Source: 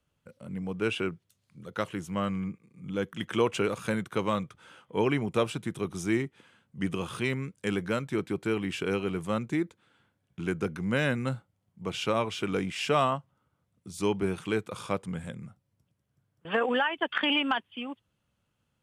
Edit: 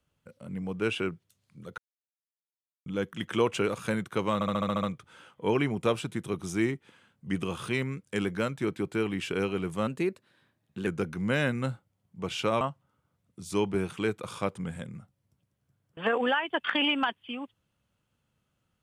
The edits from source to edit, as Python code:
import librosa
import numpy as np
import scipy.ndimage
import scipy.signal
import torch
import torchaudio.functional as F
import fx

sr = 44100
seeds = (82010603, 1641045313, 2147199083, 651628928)

y = fx.edit(x, sr, fx.silence(start_s=1.78, length_s=1.08),
    fx.stutter(start_s=4.34, slice_s=0.07, count=8),
    fx.speed_span(start_s=9.38, length_s=1.12, speed=1.12),
    fx.cut(start_s=12.24, length_s=0.85), tone=tone)